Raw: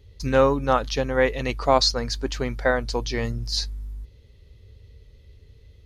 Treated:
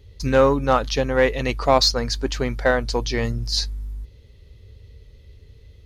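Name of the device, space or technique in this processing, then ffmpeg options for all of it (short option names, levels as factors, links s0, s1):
parallel distortion: -filter_complex "[0:a]asplit=2[s0][s1];[s1]asoftclip=type=hard:threshold=0.141,volume=0.447[s2];[s0][s2]amix=inputs=2:normalize=0"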